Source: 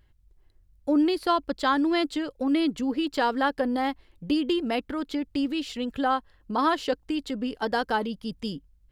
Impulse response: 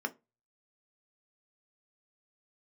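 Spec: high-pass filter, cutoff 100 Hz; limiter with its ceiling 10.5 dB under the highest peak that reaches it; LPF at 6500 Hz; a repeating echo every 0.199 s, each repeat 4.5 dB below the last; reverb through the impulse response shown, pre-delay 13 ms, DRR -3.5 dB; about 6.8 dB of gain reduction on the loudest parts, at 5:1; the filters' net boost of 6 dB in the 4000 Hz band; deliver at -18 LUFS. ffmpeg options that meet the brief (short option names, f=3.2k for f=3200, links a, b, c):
-filter_complex "[0:a]highpass=100,lowpass=6.5k,equalizer=f=4k:t=o:g=8.5,acompressor=threshold=-26dB:ratio=5,alimiter=level_in=2dB:limit=-24dB:level=0:latency=1,volume=-2dB,aecho=1:1:199|398|597|796|995|1194|1393|1592|1791:0.596|0.357|0.214|0.129|0.0772|0.0463|0.0278|0.0167|0.01,asplit=2[a][b];[1:a]atrim=start_sample=2205,adelay=13[c];[b][c]afir=irnorm=-1:irlink=0,volume=0dB[d];[a][d]amix=inputs=2:normalize=0,volume=9.5dB"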